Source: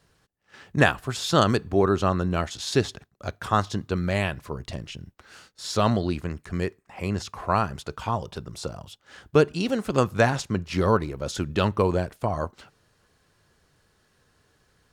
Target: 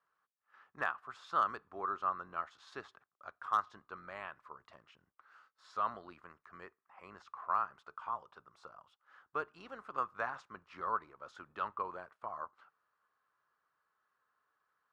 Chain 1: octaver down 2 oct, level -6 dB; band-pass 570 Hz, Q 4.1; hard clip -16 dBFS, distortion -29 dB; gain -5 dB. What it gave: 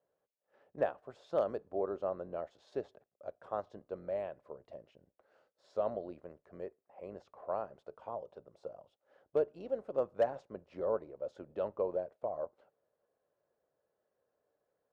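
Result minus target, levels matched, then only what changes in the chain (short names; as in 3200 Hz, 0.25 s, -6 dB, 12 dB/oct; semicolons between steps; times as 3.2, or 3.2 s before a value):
500 Hz band +13.0 dB
change: band-pass 1200 Hz, Q 4.1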